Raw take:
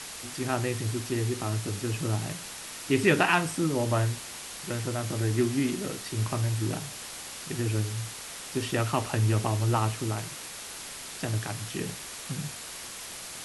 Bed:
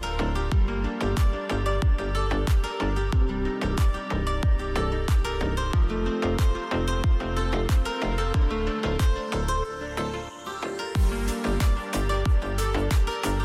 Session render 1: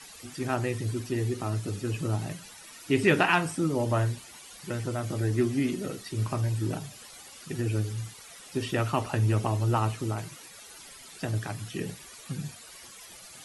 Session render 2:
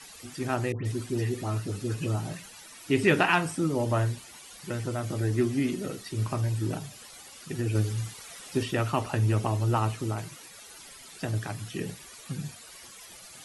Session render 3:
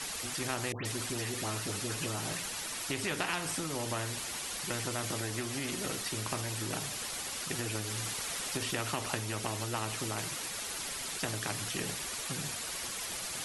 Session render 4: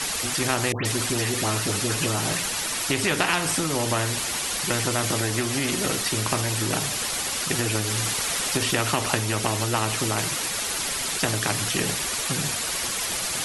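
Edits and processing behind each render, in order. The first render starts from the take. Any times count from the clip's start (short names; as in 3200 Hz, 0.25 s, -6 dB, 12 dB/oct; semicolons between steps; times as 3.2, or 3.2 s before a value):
denoiser 13 dB, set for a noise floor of -41 dBFS
0.72–2.82 dispersion highs, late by 0.135 s, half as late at 1800 Hz; 7.75–8.63 gain +3 dB
compressor, threshold -27 dBFS, peak gain reduction 10 dB; spectral compressor 2:1
gain +11 dB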